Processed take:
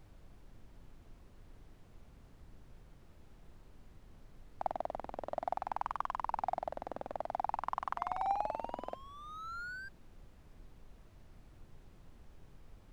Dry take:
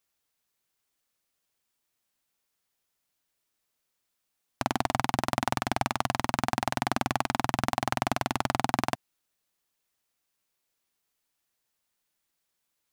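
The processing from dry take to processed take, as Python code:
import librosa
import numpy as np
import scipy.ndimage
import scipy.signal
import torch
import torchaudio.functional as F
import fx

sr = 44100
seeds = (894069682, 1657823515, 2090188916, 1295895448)

y = fx.spec_paint(x, sr, seeds[0], shape='rise', start_s=7.96, length_s=1.93, low_hz=680.0, high_hz=1600.0, level_db=-31.0)
y = fx.wah_lfo(y, sr, hz=0.54, low_hz=520.0, high_hz=1100.0, q=5.1)
y = fx.backlash(y, sr, play_db=-44.0)
y = fx.dmg_noise_colour(y, sr, seeds[1], colour='brown', level_db=-53.0)
y = y * librosa.db_to_amplitude(-1.0)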